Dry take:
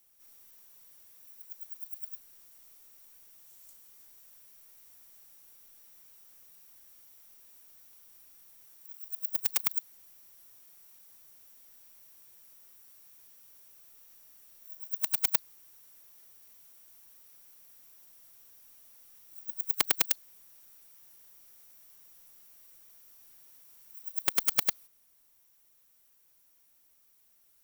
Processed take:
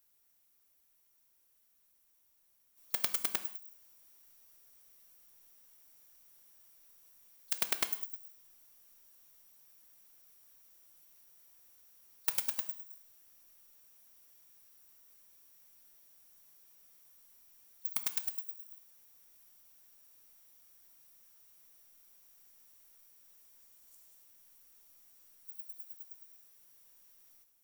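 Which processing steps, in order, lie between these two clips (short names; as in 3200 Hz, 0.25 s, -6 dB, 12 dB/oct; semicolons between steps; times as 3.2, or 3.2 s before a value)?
whole clip reversed; non-linear reverb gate 0.23 s falling, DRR 9.5 dB; gain -6 dB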